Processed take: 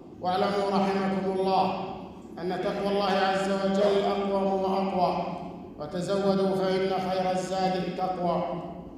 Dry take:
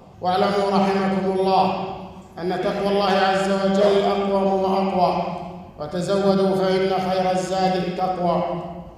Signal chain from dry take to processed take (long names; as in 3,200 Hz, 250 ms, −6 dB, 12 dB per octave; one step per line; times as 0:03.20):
noise in a band 190–390 Hz −38 dBFS
level −6.5 dB